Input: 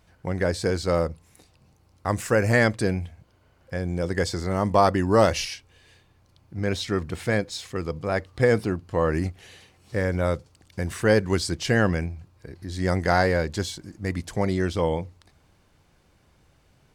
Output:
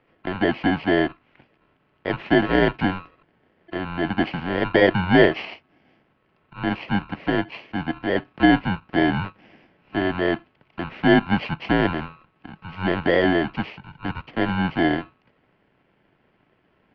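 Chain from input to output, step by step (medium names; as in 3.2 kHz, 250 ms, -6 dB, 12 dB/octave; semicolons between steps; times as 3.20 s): bit-reversed sample order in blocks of 32 samples; mistuned SSB -180 Hz 320–3200 Hz; trim +7 dB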